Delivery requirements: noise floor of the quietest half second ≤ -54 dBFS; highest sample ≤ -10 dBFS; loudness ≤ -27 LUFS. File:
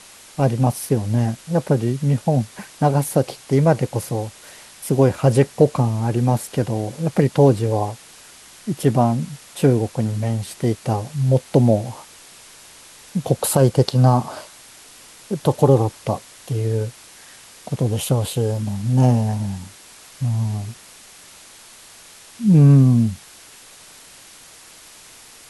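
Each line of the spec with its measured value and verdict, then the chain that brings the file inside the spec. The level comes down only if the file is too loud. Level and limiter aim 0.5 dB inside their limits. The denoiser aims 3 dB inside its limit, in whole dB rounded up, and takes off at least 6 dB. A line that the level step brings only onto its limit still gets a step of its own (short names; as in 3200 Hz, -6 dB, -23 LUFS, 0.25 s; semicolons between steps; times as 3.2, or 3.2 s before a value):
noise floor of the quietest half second -45 dBFS: fail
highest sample -2.0 dBFS: fail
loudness -19.5 LUFS: fail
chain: denoiser 6 dB, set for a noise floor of -45 dBFS; gain -8 dB; limiter -10.5 dBFS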